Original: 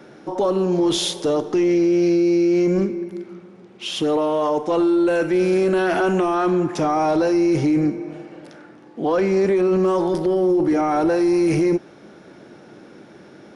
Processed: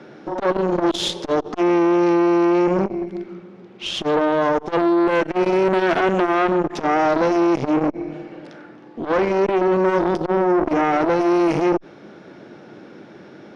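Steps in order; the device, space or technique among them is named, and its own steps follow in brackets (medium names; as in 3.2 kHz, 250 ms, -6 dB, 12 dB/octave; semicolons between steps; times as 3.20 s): valve radio (band-pass 80–4700 Hz; valve stage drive 15 dB, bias 0.8; transformer saturation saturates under 680 Hz); trim +7.5 dB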